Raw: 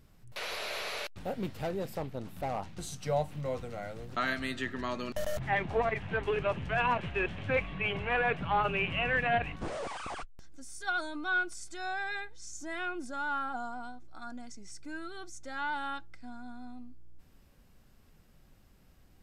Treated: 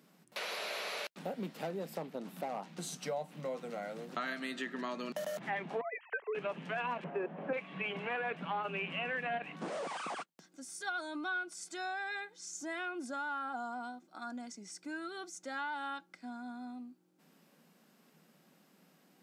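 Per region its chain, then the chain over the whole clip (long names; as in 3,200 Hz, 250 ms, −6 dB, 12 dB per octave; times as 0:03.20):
0:05.81–0:06.35: three sine waves on the formant tracks + noise gate with hold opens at −45 dBFS, closes at −51 dBFS + dynamic equaliser 580 Hz, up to −5 dB, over −41 dBFS, Q 1.3
0:07.04–0:07.53: variable-slope delta modulation 64 kbit/s + low-pass filter 1,300 Hz + parametric band 590 Hz +9 dB 1.8 octaves
whole clip: Chebyshev high-pass filter 160 Hz, order 6; downward compressor 3 to 1, threshold −39 dBFS; level +2 dB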